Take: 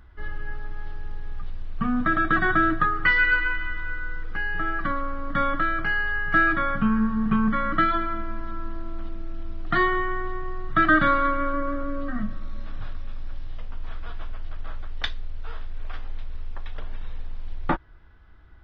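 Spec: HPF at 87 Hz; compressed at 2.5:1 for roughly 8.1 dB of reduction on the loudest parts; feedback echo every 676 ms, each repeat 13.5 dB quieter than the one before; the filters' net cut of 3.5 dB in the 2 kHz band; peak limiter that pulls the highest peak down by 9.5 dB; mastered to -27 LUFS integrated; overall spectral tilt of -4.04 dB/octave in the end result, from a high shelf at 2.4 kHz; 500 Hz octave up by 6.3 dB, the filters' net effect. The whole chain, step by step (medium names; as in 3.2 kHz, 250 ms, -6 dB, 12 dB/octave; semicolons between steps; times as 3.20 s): high-pass 87 Hz; peaking EQ 500 Hz +8.5 dB; peaking EQ 2 kHz -7.5 dB; treble shelf 2.4 kHz +4.5 dB; compression 2.5:1, threshold -28 dBFS; peak limiter -22.5 dBFS; feedback delay 676 ms, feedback 21%, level -13.5 dB; trim +5 dB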